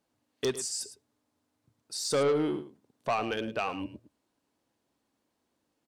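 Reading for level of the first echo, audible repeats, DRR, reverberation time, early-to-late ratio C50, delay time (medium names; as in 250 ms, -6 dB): -13.5 dB, 1, no reverb, no reverb, no reverb, 108 ms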